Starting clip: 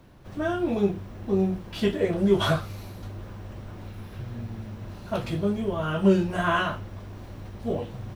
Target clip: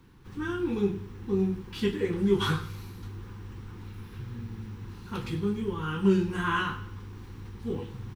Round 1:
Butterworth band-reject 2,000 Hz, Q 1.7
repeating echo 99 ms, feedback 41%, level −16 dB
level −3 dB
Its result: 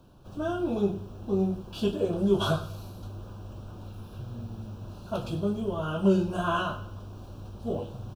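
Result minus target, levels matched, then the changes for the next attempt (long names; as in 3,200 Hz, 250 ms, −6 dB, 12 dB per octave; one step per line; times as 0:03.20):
2,000 Hz band −4.5 dB
change: Butterworth band-reject 630 Hz, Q 1.7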